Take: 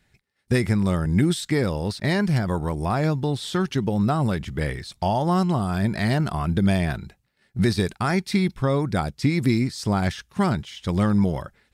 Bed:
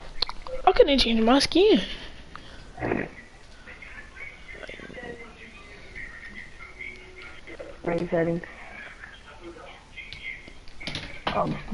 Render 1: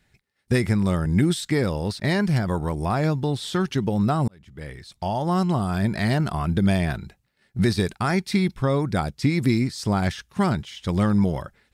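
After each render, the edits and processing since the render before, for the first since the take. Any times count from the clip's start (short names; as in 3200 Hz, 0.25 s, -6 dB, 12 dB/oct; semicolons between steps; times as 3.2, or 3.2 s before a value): 4.28–5.51 fade in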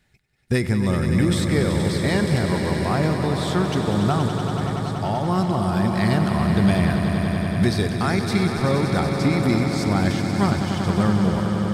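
swelling echo 95 ms, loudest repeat 5, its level -9.5 dB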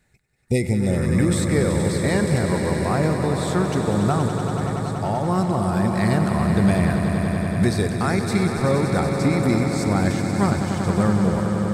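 0.38–1 spectral repair 890–1900 Hz both; thirty-one-band EQ 500 Hz +4 dB, 3150 Hz -9 dB, 5000 Hz -4 dB, 8000 Hz +6 dB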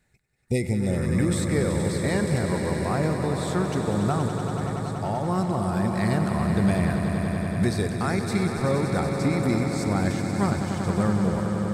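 gain -4 dB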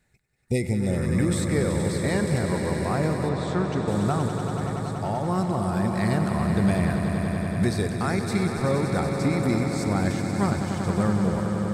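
3.29–3.88 air absorption 83 m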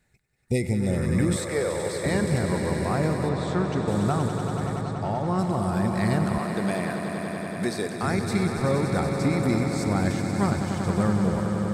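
1.36–2.06 resonant low shelf 340 Hz -10 dB, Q 1.5; 4.81–5.39 air absorption 60 m; 6.38–8.03 HPF 250 Hz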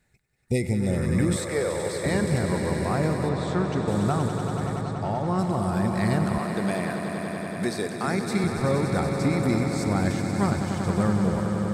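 8–8.44 HPF 140 Hz 24 dB/oct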